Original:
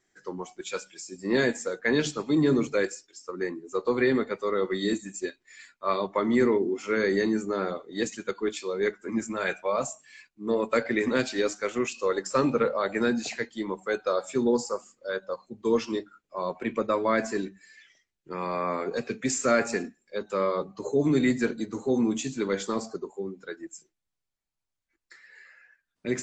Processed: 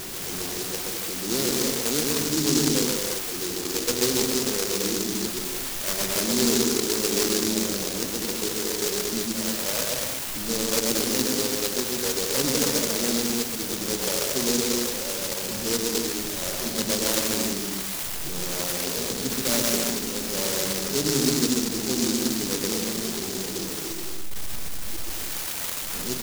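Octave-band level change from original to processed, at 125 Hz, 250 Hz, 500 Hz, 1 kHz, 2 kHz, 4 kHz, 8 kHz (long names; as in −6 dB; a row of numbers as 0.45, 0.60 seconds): +3.0, +0.5, −2.0, −3.0, −0.5, +14.0, +15.5 decibels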